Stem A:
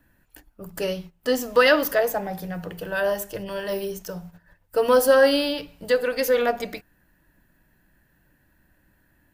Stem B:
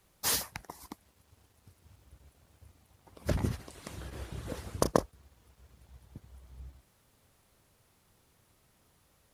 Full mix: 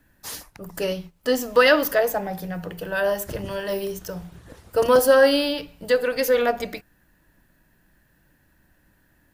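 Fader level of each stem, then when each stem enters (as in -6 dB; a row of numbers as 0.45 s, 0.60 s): +1.0 dB, -5.5 dB; 0.00 s, 0.00 s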